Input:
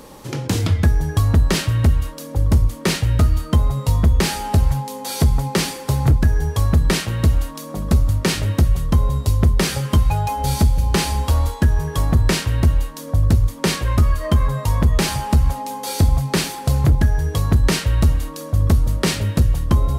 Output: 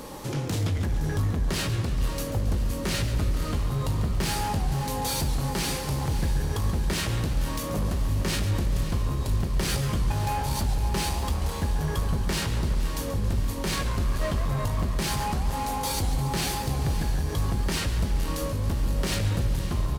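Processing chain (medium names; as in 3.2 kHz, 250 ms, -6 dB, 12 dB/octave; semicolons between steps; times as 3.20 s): in parallel at -1 dB: compressor with a negative ratio -23 dBFS; on the sum: peak limiter -8 dBFS, peak gain reduction 7 dB; saturation -16.5 dBFS, distortion -11 dB; doubling 20 ms -12 dB; on a send: echo that smears into a reverb 554 ms, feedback 68%, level -11 dB; on the sum: modulated delay 139 ms, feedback 62%, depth 189 cents, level -11 dB; trim -7.5 dB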